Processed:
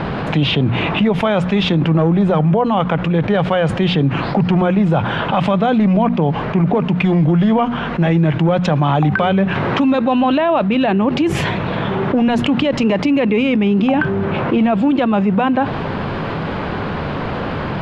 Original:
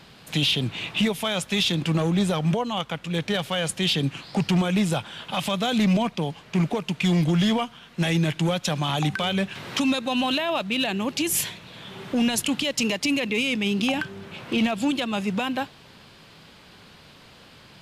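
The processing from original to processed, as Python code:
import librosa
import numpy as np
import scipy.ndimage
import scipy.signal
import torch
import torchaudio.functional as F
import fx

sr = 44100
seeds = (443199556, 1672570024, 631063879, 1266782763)

y = scipy.signal.sosfilt(scipy.signal.butter(2, 1300.0, 'lowpass', fs=sr, output='sos'), x)
y = fx.hum_notches(y, sr, base_hz=60, count=4)
y = fx.env_flatten(y, sr, amount_pct=70)
y = y * librosa.db_to_amplitude(6.5)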